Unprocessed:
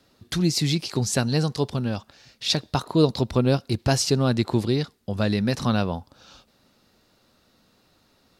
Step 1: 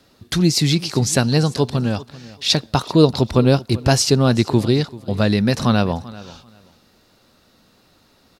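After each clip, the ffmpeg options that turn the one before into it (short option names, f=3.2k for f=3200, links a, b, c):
-af "aecho=1:1:389|778:0.112|0.0224,volume=6dB"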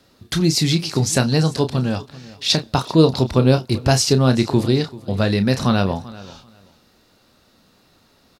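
-filter_complex "[0:a]asplit=2[a][b];[b]adelay=31,volume=-9.5dB[c];[a][c]amix=inputs=2:normalize=0,volume=-1dB"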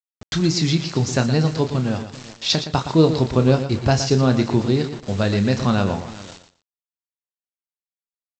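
-af "aresample=16000,acrusher=bits=5:mix=0:aa=0.000001,aresample=44100,aecho=1:1:117|234:0.299|0.0537,adynamicequalizer=threshold=0.0141:dfrequency=2700:dqfactor=0.7:tfrequency=2700:tqfactor=0.7:attack=5:release=100:ratio=0.375:range=2.5:mode=cutabove:tftype=highshelf,volume=-1.5dB"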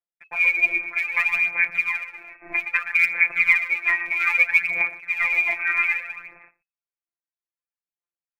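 -af "lowpass=f=2.2k:t=q:w=0.5098,lowpass=f=2.2k:t=q:w=0.6013,lowpass=f=2.2k:t=q:w=0.9,lowpass=f=2.2k:t=q:w=2.563,afreqshift=-2600,aphaser=in_gain=1:out_gain=1:delay=3.2:decay=0.67:speed=0.62:type=sinusoidal,afftfilt=real='hypot(re,im)*cos(PI*b)':imag='0':win_size=1024:overlap=0.75,volume=-1dB"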